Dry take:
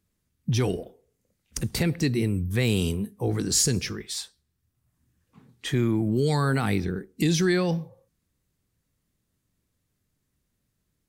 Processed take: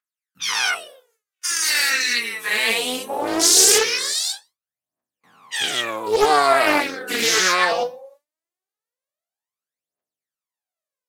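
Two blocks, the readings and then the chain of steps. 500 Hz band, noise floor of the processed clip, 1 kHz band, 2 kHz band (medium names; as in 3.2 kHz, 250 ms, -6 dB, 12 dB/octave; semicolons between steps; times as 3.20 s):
+6.5 dB, under -85 dBFS, +15.5 dB, +14.5 dB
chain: every event in the spectrogram widened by 240 ms; gate with hold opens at -48 dBFS; phaser 0.2 Hz, delay 4.8 ms, feedback 79%; high-pass sweep 1.4 kHz -> 650 Hz, 2.12–2.98 s; loudspeaker Doppler distortion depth 0.27 ms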